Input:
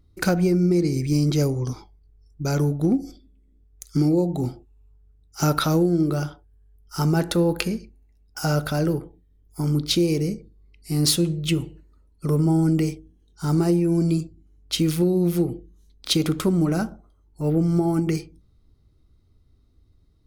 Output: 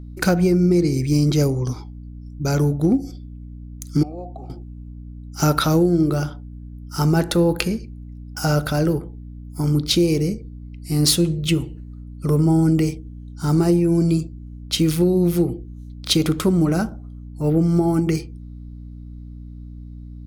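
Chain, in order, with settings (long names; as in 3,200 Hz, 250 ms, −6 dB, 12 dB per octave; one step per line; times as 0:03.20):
0:04.03–0:04.50: formant filter a
mains hum 60 Hz, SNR 15 dB
level +3 dB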